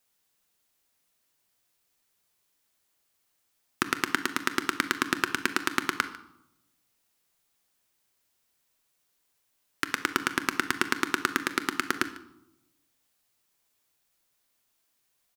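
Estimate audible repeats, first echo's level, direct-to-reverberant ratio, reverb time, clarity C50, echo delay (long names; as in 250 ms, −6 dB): 1, −20.0 dB, 10.0 dB, 0.85 s, 12.5 dB, 148 ms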